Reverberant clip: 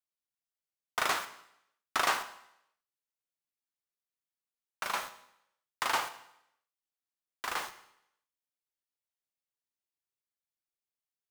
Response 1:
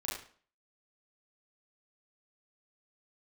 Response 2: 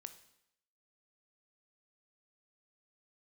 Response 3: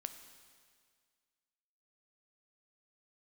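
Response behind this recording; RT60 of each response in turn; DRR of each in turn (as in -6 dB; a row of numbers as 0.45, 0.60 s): 2; 0.45, 0.80, 1.9 s; -7.0, 9.5, 8.0 dB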